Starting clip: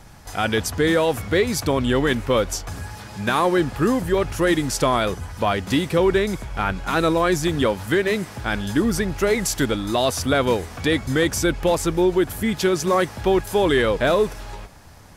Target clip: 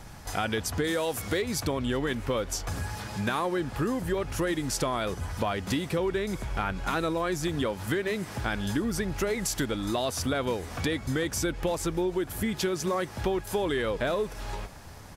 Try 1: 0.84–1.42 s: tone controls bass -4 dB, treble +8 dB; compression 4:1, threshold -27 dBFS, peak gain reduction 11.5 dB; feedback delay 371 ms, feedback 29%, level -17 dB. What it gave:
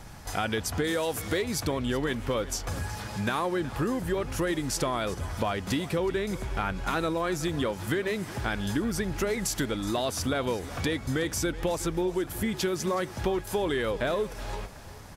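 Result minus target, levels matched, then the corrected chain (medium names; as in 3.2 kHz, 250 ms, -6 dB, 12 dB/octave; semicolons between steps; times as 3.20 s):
echo-to-direct +9.5 dB
0.84–1.42 s: tone controls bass -4 dB, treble +8 dB; compression 4:1, threshold -27 dBFS, peak gain reduction 11.5 dB; feedback delay 371 ms, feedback 29%, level -26.5 dB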